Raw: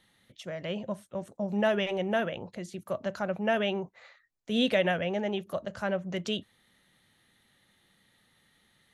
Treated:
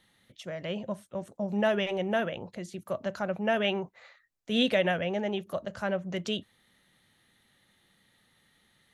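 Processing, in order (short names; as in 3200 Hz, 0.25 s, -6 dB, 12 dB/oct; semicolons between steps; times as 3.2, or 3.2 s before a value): 3.64–4.63 dynamic EQ 1800 Hz, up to +6 dB, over -47 dBFS, Q 0.73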